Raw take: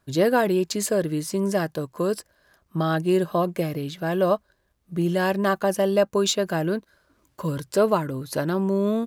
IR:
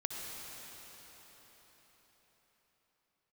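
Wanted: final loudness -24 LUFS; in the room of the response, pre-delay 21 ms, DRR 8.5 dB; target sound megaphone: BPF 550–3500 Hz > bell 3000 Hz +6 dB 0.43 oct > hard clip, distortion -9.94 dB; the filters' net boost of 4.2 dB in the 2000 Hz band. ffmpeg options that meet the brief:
-filter_complex "[0:a]equalizer=f=2k:t=o:g=5.5,asplit=2[a][b];[1:a]atrim=start_sample=2205,adelay=21[c];[b][c]afir=irnorm=-1:irlink=0,volume=-10.5dB[d];[a][d]amix=inputs=2:normalize=0,highpass=550,lowpass=3.5k,equalizer=f=3k:t=o:w=0.43:g=6,asoftclip=type=hard:threshold=-21dB,volume=5dB"

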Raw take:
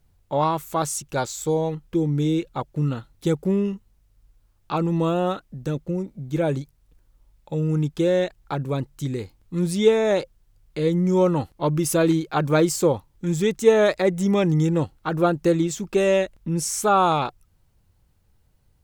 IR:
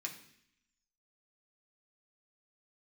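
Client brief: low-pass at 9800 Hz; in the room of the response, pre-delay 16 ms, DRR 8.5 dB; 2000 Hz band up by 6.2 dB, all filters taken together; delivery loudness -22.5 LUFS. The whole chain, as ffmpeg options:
-filter_complex "[0:a]lowpass=9.8k,equalizer=f=2k:t=o:g=8,asplit=2[a][b];[1:a]atrim=start_sample=2205,adelay=16[c];[b][c]afir=irnorm=-1:irlink=0,volume=-8dB[d];[a][d]amix=inputs=2:normalize=0,volume=-0.5dB"

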